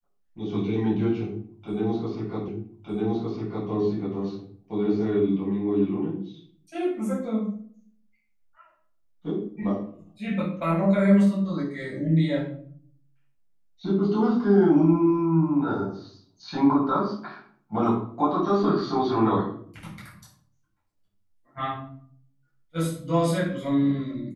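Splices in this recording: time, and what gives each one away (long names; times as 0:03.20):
0:02.48: the same again, the last 1.21 s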